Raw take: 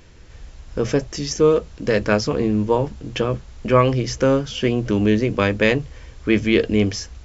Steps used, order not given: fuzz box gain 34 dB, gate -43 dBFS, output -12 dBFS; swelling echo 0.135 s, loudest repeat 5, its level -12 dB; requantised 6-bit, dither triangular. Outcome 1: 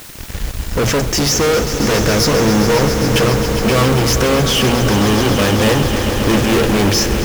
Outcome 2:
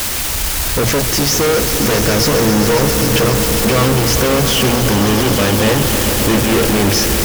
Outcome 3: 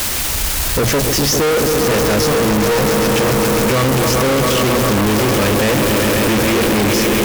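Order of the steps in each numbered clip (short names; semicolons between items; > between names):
fuzz box > requantised > swelling echo; requantised > fuzz box > swelling echo; requantised > swelling echo > fuzz box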